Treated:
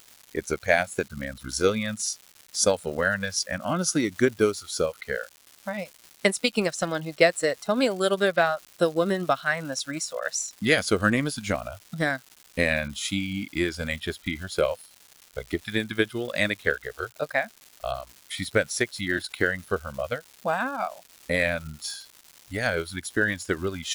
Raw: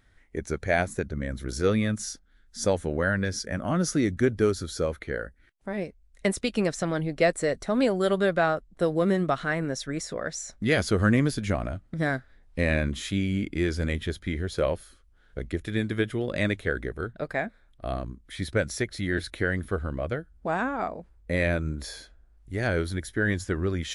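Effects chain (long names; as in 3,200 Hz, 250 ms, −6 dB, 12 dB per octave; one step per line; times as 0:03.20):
low-shelf EQ 150 Hz −10 dB
transient designer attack +5 dB, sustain −4 dB
noise reduction from a noise print of the clip's start 20 dB
surface crackle 380 per second −42 dBFS
high-shelf EQ 2,900 Hz +8 dB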